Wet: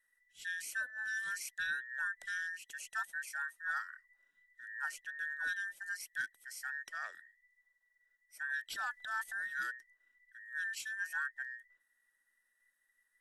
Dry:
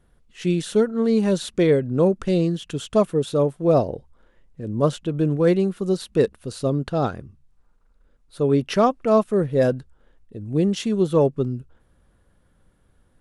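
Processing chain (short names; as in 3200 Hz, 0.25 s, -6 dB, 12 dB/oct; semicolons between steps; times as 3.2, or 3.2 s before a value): band inversion scrambler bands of 2000 Hz; 8.71–9.55 transient shaper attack -3 dB, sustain +8 dB; pre-emphasis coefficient 0.9; gain -8 dB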